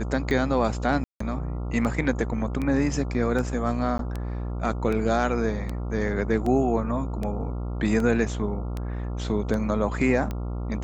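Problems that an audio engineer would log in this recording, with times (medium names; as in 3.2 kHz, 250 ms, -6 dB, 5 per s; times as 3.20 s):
buzz 60 Hz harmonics 23 -30 dBFS
tick 78 rpm -18 dBFS
1.04–1.20 s: dropout 164 ms
3.98–3.99 s: dropout 12 ms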